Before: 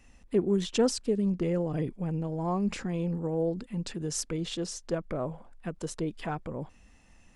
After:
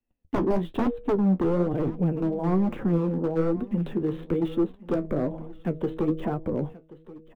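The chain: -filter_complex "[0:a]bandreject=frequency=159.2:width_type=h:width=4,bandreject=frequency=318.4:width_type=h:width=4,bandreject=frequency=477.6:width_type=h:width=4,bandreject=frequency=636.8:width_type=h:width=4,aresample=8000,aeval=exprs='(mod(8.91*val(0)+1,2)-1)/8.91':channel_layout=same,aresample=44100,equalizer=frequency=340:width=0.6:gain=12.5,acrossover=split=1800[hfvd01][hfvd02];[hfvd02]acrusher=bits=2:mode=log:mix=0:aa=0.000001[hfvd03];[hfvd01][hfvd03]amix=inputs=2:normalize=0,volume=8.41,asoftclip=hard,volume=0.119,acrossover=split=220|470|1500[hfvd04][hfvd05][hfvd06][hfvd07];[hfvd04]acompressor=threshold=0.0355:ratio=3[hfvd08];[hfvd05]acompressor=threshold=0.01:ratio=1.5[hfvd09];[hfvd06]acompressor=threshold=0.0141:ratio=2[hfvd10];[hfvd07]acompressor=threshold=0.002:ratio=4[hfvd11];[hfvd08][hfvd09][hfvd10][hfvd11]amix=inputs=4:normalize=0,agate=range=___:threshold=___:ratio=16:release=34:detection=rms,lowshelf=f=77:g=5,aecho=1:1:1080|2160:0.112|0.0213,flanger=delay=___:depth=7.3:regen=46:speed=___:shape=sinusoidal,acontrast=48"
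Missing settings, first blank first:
0.0178, 0.00398, 8.3, 1.1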